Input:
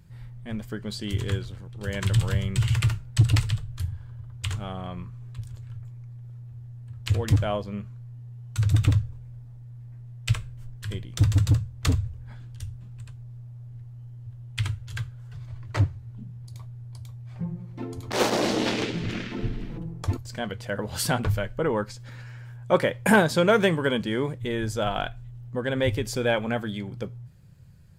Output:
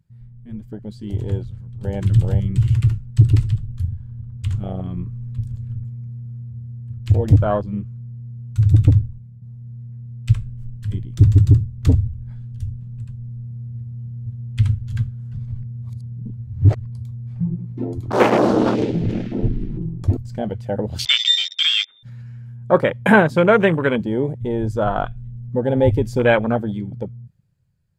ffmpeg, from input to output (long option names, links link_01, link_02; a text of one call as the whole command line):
ffmpeg -i in.wav -filter_complex "[0:a]asettb=1/sr,asplit=3[link_01][link_02][link_03];[link_01]atrim=end=21.054[link_04];[link_02]atrim=start=21.05:end=22.03,asetpts=PTS-STARTPTS,afade=type=in:duration=0.004:curve=qsin,afade=type=out:start_time=0.976:duration=0.004:curve=qsin,lowpass=frequency=3100:width_type=q:width=0.5098,lowpass=frequency=3100:width_type=q:width=0.6013,lowpass=frequency=3100:width_type=q:width=0.9,lowpass=frequency=3100:width_type=q:width=2.563,afreqshift=-3700[link_05];[link_03]atrim=start=22.026[link_06];[link_04][link_05]acrossfade=duration=0.004:curve1=hsin:curve2=qsin[link_07];[link_07][link_06]acrossfade=duration=0.004:curve1=qsin:curve2=hsin,asplit=4[link_08][link_09][link_10][link_11];[link_08]atrim=end=9.42,asetpts=PTS-STARTPTS,afade=type=out:start_time=8.92:duration=0.5:silence=0.398107[link_12];[link_09]atrim=start=9.42:end=15.632,asetpts=PTS-STARTPTS,afade=type=in:duration=0.004:curve=hsin:silence=0.398107[link_13];[link_10]atrim=start=15.628:end=16.862,asetpts=PTS-STARTPTS,areverse[link_14];[link_11]atrim=start=16.858[link_15];[link_12][link_13]concat=n=2:v=0:a=1[link_16];[link_16][link_14]acrossfade=duration=0.004:curve1=hsin:curve2=hsin[link_17];[link_17][link_15]acrossfade=duration=0.004:curve1=hsin:curve2=hsin,afwtdn=0.0355,dynaudnorm=framelen=220:gausssize=13:maxgain=11.5dB" out.wav